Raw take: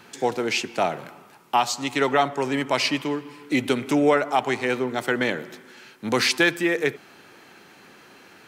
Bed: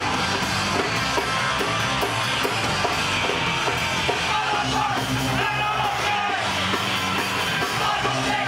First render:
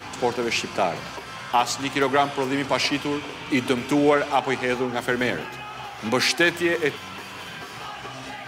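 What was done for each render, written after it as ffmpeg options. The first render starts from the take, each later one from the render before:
-filter_complex "[1:a]volume=-13.5dB[a];[0:a][a]amix=inputs=2:normalize=0"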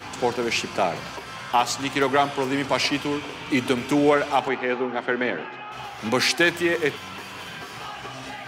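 -filter_complex "[0:a]asettb=1/sr,asplit=3[a][b][c];[a]atrim=end=4.484[d];[b]atrim=start=4.48:end=5.72,asetpts=PTS-STARTPTS,afade=t=in:d=0.004:c=qsin,afade=t=out:st=1.236:d=0.004:c=qsin,highpass=210,lowpass=2.7k[e];[c]atrim=start=5.716[f];[d][e]acrossfade=d=0.004:c1=hsin:c2=qsin[g];[g][f]acrossfade=d=0.004:c1=qsin:c2=hsin"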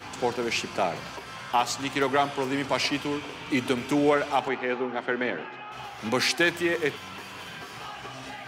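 -af "volume=-3.5dB"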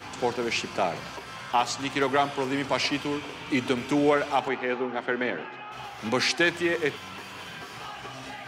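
-filter_complex "[0:a]acrossover=split=8900[a][b];[b]acompressor=threshold=-57dB:ratio=4:attack=1:release=60[c];[a][c]amix=inputs=2:normalize=0"

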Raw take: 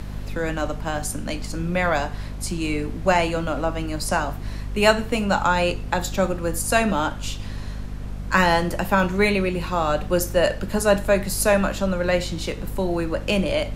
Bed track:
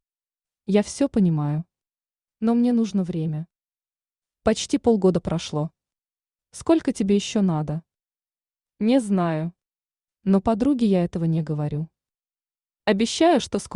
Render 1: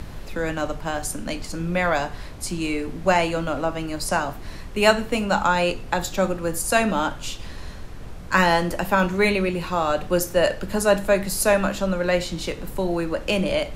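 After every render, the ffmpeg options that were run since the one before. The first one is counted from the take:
-af "bandreject=f=50:t=h:w=4,bandreject=f=100:t=h:w=4,bandreject=f=150:t=h:w=4,bandreject=f=200:t=h:w=4,bandreject=f=250:t=h:w=4"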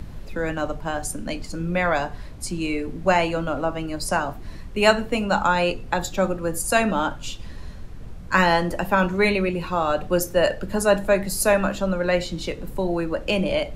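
-af "afftdn=nr=7:nf=-36"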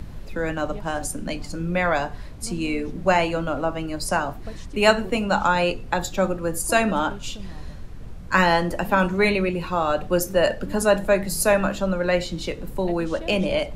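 -filter_complex "[1:a]volume=-20dB[a];[0:a][a]amix=inputs=2:normalize=0"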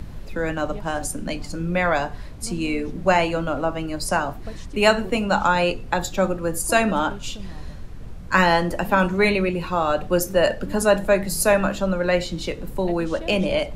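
-af "volume=1dB,alimiter=limit=-3dB:level=0:latency=1"

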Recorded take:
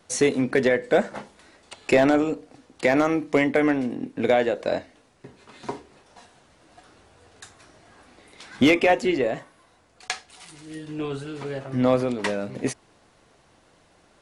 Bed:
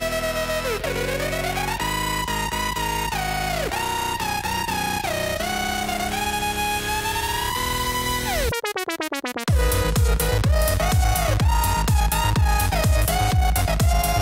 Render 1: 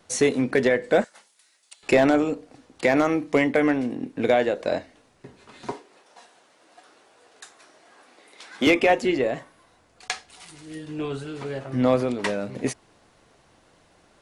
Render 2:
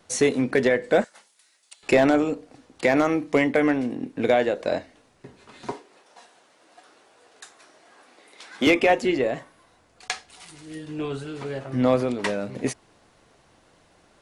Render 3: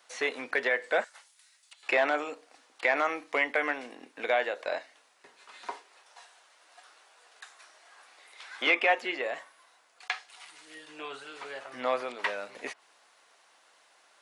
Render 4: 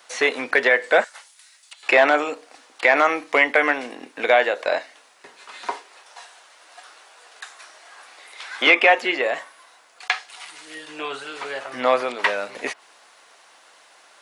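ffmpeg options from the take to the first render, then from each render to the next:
-filter_complex "[0:a]asettb=1/sr,asplit=3[a][b][c];[a]atrim=end=1.044[d];[b]atrim=start=1.04:end=1.83,asetpts=PTS-STARTPTS,afade=t=in:d=0.004:c=qsin,afade=t=out:st=0.786:d=0.004:c=qsin,aderivative[e];[c]atrim=start=1.826[f];[d][e]acrossfade=d=0.004:c1=hsin:c2=qsin[g];[g][f]acrossfade=d=0.004:c1=qsin:c2=hsin,asettb=1/sr,asplit=3[h][i][j];[h]atrim=end=5.724[k];[i]atrim=start=5.72:end=8.67,asetpts=PTS-STARTPTS,afade=t=in:d=0.004:c=qsin,afade=t=out:st=2.946:d=0.004:c=qsin,highpass=350[l];[j]atrim=start=8.666[m];[k][l]acrossfade=d=0.004:c1=hsin:c2=qsin[n];[n][m]acrossfade=d=0.004:c1=qsin:c2=hsin"
-af anull
-filter_complex "[0:a]acrossover=split=3600[a][b];[b]acompressor=threshold=-54dB:ratio=4:attack=1:release=60[c];[a][c]amix=inputs=2:normalize=0,highpass=900"
-af "volume=10.5dB,alimiter=limit=-3dB:level=0:latency=1"

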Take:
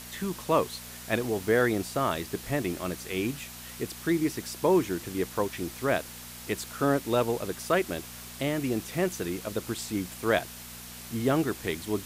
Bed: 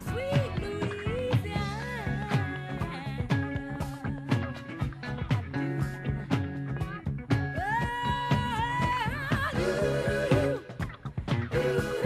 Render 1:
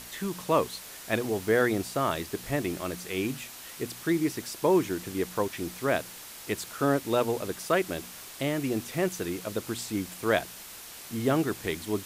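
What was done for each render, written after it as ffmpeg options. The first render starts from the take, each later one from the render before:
-af "bandreject=f=60:t=h:w=4,bandreject=f=120:t=h:w=4,bandreject=f=180:t=h:w=4,bandreject=f=240:t=h:w=4"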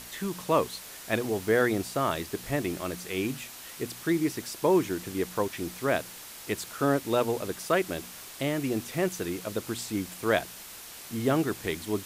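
-af anull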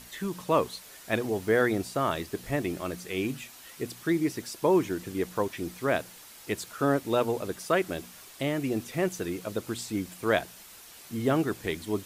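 -af "afftdn=nr=6:nf=-45"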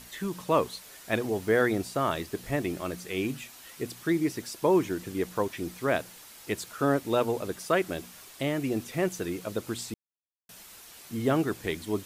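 -filter_complex "[0:a]asplit=3[a][b][c];[a]atrim=end=9.94,asetpts=PTS-STARTPTS,afade=t=out:st=9.936:d=0.004:c=hsin[d];[b]atrim=start=9.94:end=10.49,asetpts=PTS-STARTPTS,volume=0[e];[c]atrim=start=10.49,asetpts=PTS-STARTPTS,afade=t=in:d=0.004:c=hsin[f];[d][e][f]concat=n=3:v=0:a=1"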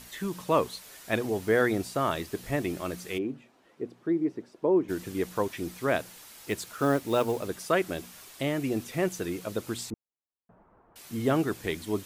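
-filter_complex "[0:a]asplit=3[a][b][c];[a]afade=t=out:st=3.17:d=0.02[d];[b]bandpass=f=370:t=q:w=0.97,afade=t=in:st=3.17:d=0.02,afade=t=out:st=4.88:d=0.02[e];[c]afade=t=in:st=4.88:d=0.02[f];[d][e][f]amix=inputs=3:normalize=0,asettb=1/sr,asplit=3[g][h][i];[g]atrim=end=6.444[j];[h]atrim=start=6.44:end=7.48,asetpts=PTS-STARTPTS,afade=t=in:d=0.004:c=qsin,afade=t=out:st=1.036:d=0.004:c=qsin,acrusher=bits=6:mode=log:mix=0:aa=0.000001[k];[i]atrim=start=7.476[l];[j][k]acrossfade=d=0.004:c1=hsin:c2=qsin[m];[m][l]acrossfade=d=0.004:c1=qsin:c2=hsin,asettb=1/sr,asplit=3[n][o][p];[n]atrim=end=9.904[q];[o]atrim=start=9.9:end=10.96,asetpts=PTS-STARTPTS,afade=t=in:d=0.004:c=qsin,afade=t=out:st=1.056:d=0.004:c=qsin,lowpass=f=1.1k:w=0.5412,lowpass=f=1.1k:w=1.3066[r];[p]atrim=start=10.956[s];[q][r]acrossfade=d=0.004:c1=hsin:c2=qsin[t];[t][s]acrossfade=d=0.004:c1=qsin:c2=hsin"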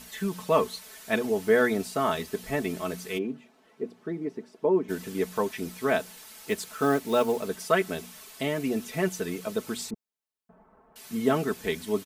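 -af "lowshelf=f=67:g=-5.5,aecho=1:1:4.6:0.69"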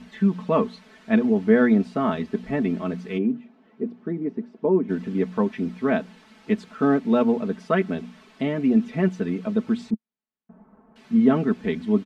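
-af "lowpass=2.8k,equalizer=f=220:w=1.8:g=13.5"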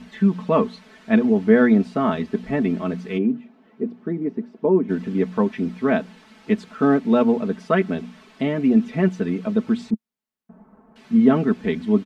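-af "volume=2.5dB"

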